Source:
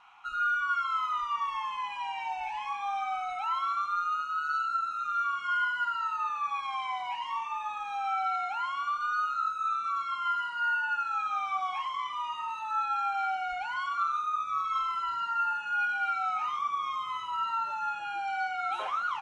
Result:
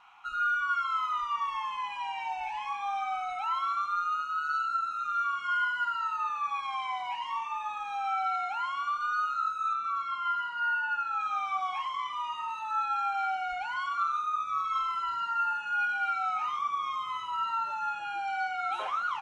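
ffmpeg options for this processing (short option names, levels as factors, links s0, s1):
-filter_complex "[0:a]asettb=1/sr,asplit=3[s0][s1][s2];[s0]atrim=end=9.734[s3];[s1]atrim=start=9.73:end=11.21,asetpts=PTS-STARTPTS,afade=t=in:d=0.004:c=qsin,afade=t=out:st=1.476:d=0.004:c=qsin,lowpass=f=3900:p=1[s4];[s2]atrim=start=11.206[s5];[s3][s4]acrossfade=d=0.004:c1=hsin:c2=qsin[s6];[s6][s5]acrossfade=d=0.004:c1=qsin:c2=hsin"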